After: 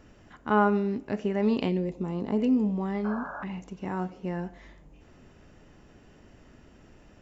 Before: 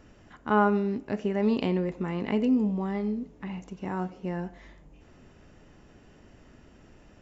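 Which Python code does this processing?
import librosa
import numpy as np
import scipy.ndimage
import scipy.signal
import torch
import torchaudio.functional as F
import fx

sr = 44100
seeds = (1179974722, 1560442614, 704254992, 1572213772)

y = fx.peak_eq(x, sr, hz=fx.line((1.68, 1100.0), (2.38, 2600.0)), db=-14.5, octaves=1.1, at=(1.68, 2.38), fade=0.02)
y = fx.spec_paint(y, sr, seeds[0], shape='noise', start_s=3.04, length_s=0.4, low_hz=540.0, high_hz=1700.0, level_db=-38.0)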